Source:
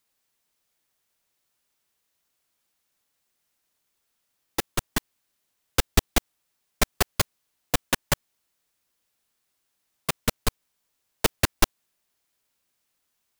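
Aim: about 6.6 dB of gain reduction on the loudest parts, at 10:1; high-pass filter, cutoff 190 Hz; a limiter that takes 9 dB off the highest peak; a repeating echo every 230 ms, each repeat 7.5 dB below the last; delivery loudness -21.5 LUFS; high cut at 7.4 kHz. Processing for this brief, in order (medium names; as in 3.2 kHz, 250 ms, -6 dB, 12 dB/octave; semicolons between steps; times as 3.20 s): high-pass 190 Hz; low-pass 7.4 kHz; compression 10:1, threshold -25 dBFS; peak limiter -19.5 dBFS; feedback delay 230 ms, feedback 42%, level -7.5 dB; trim +18 dB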